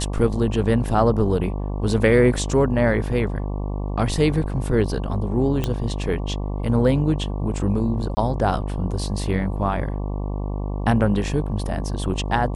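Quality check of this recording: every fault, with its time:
buzz 50 Hz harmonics 23 -26 dBFS
5.64 pop -10 dBFS
8.15–8.17 gap 20 ms

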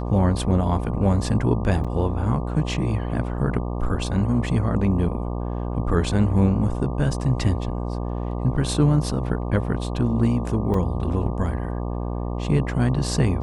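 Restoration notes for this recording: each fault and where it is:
buzz 60 Hz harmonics 20 -27 dBFS
1.84–1.85 gap 6.1 ms
10.74 gap 2.6 ms

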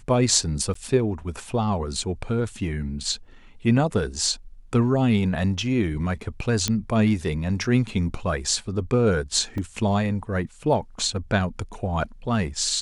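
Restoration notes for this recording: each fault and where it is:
0.74–0.75 gap 14 ms
6.68 pop -7 dBFS
9.58 gap 2.2 ms

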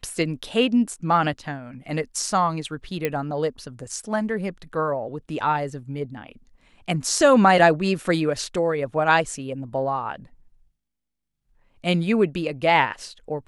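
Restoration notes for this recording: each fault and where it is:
3.05 pop -10 dBFS

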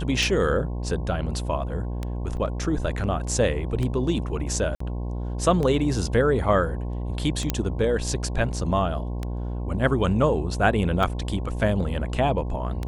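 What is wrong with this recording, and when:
buzz 60 Hz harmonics 18 -29 dBFS
tick 33 1/3 rpm
2.37 gap 3.2 ms
4.75–4.8 gap 54 ms
7.5 pop -7 dBFS

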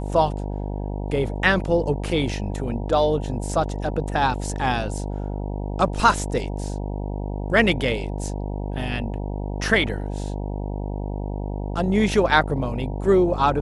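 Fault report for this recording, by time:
buzz 50 Hz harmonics 19 -28 dBFS

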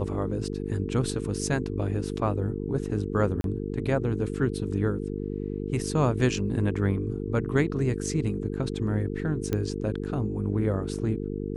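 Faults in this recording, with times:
buzz 50 Hz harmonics 9 -32 dBFS
3.41–3.44 gap 32 ms
9.53 pop -14 dBFS

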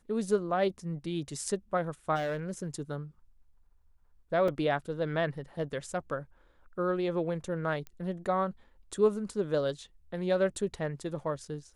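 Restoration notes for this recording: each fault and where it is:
2.15–2.67 clipped -28.5 dBFS
4.48 gap 3.8 ms
7.87 pop -29 dBFS

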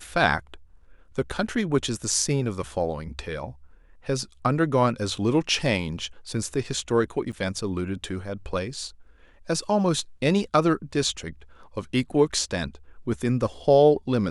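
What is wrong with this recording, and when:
7.32–7.33 gap 8.2 ms

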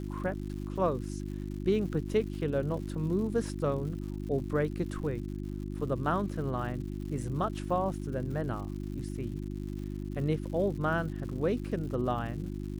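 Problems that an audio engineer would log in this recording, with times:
crackle 180/s -42 dBFS
hum 50 Hz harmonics 7 -37 dBFS

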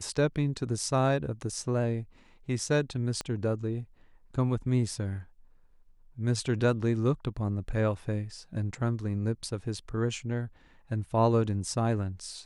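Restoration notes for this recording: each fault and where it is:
3.21 pop -19 dBFS

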